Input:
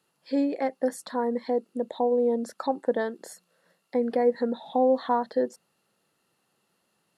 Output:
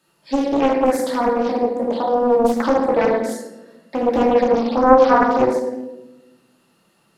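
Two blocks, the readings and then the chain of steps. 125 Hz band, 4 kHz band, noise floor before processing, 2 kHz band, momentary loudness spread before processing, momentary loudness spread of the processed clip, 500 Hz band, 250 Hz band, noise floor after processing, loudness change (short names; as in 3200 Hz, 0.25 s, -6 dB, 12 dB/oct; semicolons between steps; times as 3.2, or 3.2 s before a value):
n/a, +10.5 dB, -74 dBFS, +14.0 dB, 8 LU, 12 LU, +9.5 dB, +9.5 dB, -61 dBFS, +9.5 dB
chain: shoebox room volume 520 m³, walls mixed, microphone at 2.7 m; Doppler distortion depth 0.62 ms; gain +4.5 dB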